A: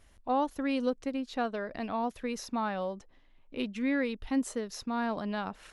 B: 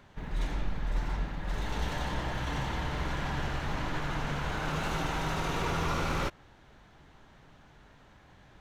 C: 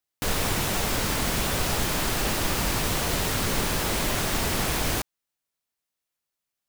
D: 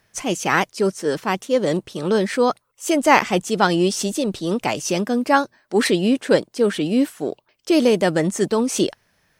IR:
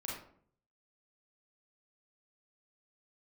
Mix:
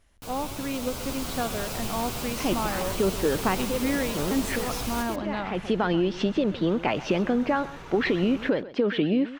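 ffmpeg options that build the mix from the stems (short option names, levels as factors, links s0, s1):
-filter_complex "[0:a]volume=0.708,asplit=3[s0][s1][s2];[s1]volume=0.15[s3];[1:a]adelay=2200,volume=0.141,asplit=2[s4][s5];[s5]volume=0.224[s6];[2:a]equalizer=f=1800:w=3.6:g=-8.5,asplit=2[s7][s8];[s8]adelay=9.1,afreqshift=0.71[s9];[s7][s9]amix=inputs=2:normalize=1,volume=0.316,asplit=2[s10][s11];[s11]volume=0.596[s12];[3:a]alimiter=limit=0.237:level=0:latency=1:release=120,lowpass=f=3200:w=0.5412,lowpass=f=3200:w=1.3066,acompressor=threshold=0.0562:ratio=6,adelay=2200,volume=0.944,asplit=2[s13][s14];[s14]volume=0.15[s15];[s2]apad=whole_len=511515[s16];[s13][s16]sidechaincompress=threshold=0.00501:ratio=8:attack=16:release=133[s17];[s3][s6][s12][s15]amix=inputs=4:normalize=0,aecho=0:1:131:1[s18];[s0][s4][s10][s17][s18]amix=inputs=5:normalize=0,dynaudnorm=f=270:g=7:m=1.78"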